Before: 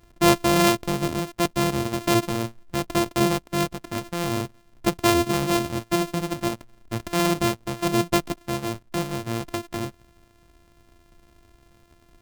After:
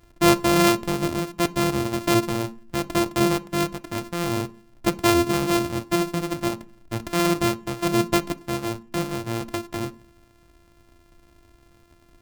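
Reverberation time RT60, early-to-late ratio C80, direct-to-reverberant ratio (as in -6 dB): 0.40 s, 26.5 dB, 11.5 dB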